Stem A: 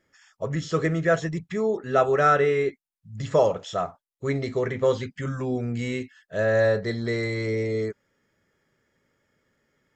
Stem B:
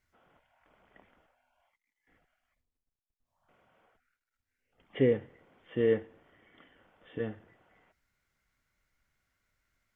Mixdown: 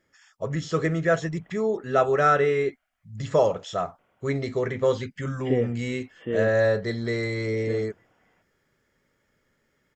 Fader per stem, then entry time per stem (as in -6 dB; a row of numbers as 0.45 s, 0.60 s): -0.5 dB, 0.0 dB; 0.00 s, 0.50 s